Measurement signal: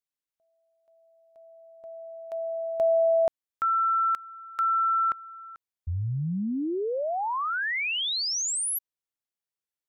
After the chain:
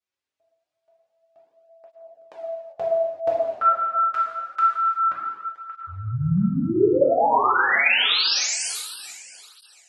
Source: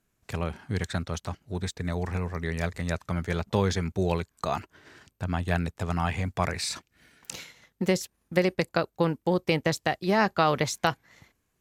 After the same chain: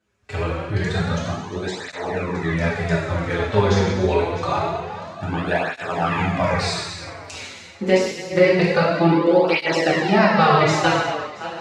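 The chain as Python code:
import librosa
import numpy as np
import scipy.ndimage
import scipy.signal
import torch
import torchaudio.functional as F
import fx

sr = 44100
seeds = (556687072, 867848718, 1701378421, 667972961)

y = fx.reverse_delay_fb(x, sr, ms=338, feedback_pct=44, wet_db=-13)
y = fx.highpass(y, sr, hz=160.0, slope=6)
y = fx.air_absorb(y, sr, metres=94.0)
y = fx.rev_gated(y, sr, seeds[0], gate_ms=420, shape='falling', drr_db=-6.5)
y = fx.flanger_cancel(y, sr, hz=0.26, depth_ms=7.0)
y = F.gain(torch.from_numpy(y), 6.0).numpy()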